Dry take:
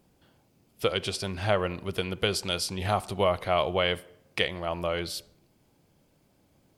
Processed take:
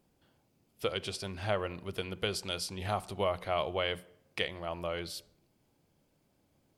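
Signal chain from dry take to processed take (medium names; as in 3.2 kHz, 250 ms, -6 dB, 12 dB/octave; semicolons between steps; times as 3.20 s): hum notches 60/120/180 Hz; trim -6.5 dB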